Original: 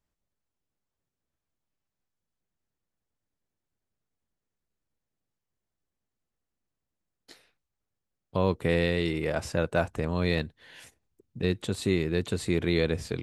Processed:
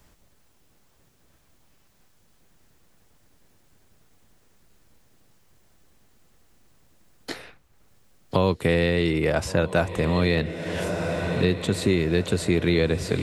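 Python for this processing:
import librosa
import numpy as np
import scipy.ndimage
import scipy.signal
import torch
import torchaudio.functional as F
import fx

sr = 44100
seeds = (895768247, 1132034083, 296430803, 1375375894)

y = fx.echo_diffused(x, sr, ms=1394, feedback_pct=62, wet_db=-13.0)
y = fx.band_squash(y, sr, depth_pct=70)
y = y * 10.0 ** (4.5 / 20.0)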